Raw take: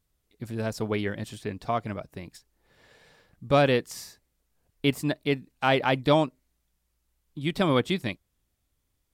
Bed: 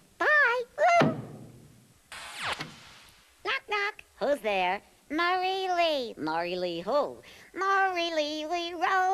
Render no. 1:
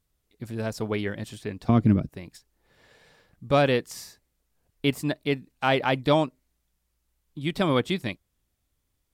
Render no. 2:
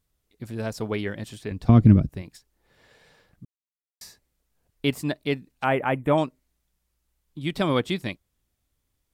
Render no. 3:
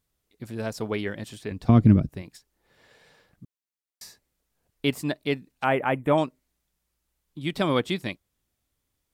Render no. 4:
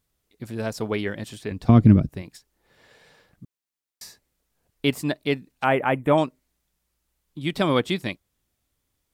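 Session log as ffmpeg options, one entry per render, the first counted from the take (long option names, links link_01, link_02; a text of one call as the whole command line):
ffmpeg -i in.wav -filter_complex "[0:a]asettb=1/sr,asplit=3[link_01][link_02][link_03];[link_01]atrim=end=1.694[link_04];[link_02]atrim=start=1.69:end=2.09,asetpts=PTS-STARTPTS,afade=type=in:duration=0.004:curve=qsin,afade=type=out:start_time=0.396:duration=0.004:curve=qsin,lowshelf=frequency=430:width_type=q:width=1.5:gain=14[link_05];[link_03]atrim=start=2.086[link_06];[link_04][link_05]acrossfade=duration=0.004:curve1=hsin:curve2=qsin[link_07];[link_07][link_06]acrossfade=duration=0.004:curve1=qsin:curve2=hsin" out.wav
ffmpeg -i in.wav -filter_complex "[0:a]asettb=1/sr,asplit=3[link_01][link_02][link_03];[link_01]atrim=end=1.514[link_04];[link_02]atrim=start=1.51:end=2.22,asetpts=PTS-STARTPTS,afade=type=in:duration=0.004:curve=qsin,afade=type=out:start_time=0.706:duration=0.004:curve=qsin,lowshelf=frequency=150:gain=12[link_05];[link_03]atrim=start=2.216[link_06];[link_04][link_05]acrossfade=duration=0.004:curve1=hsin:curve2=qsin[link_07];[link_07][link_06]acrossfade=duration=0.004:curve1=qsin:curve2=hsin,asettb=1/sr,asplit=3[link_08][link_09][link_10];[link_08]atrim=end=5.644[link_11];[link_09]atrim=start=5.64:end=6.18,asetpts=PTS-STARTPTS,afade=type=in:duration=0.004:curve=qsin,afade=type=out:start_time=0.536:duration=0.004:curve=qsin,asuperstop=centerf=4600:order=4:qfactor=0.77[link_12];[link_10]atrim=start=6.176[link_13];[link_11][link_12]acrossfade=duration=0.004:curve1=hsin:curve2=qsin[link_14];[link_14][link_13]acrossfade=duration=0.004:curve1=qsin:curve2=hsin,asplit=3[link_15][link_16][link_17];[link_15]atrim=end=3.45,asetpts=PTS-STARTPTS,afade=type=out:start_time=3.446:duration=0.004:curve=hsin[link_18];[link_16]atrim=start=3.45:end=4.01,asetpts=PTS-STARTPTS,volume=0[link_19];[link_17]atrim=start=4.01,asetpts=PTS-STARTPTS,afade=type=in:duration=0.004:curve=hsin[link_20];[link_18][link_19][link_20]concat=n=3:v=0:a=1" out.wav
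ffmpeg -i in.wav -af "lowshelf=frequency=91:gain=-7" out.wav
ffmpeg -i in.wav -af "volume=2.5dB" out.wav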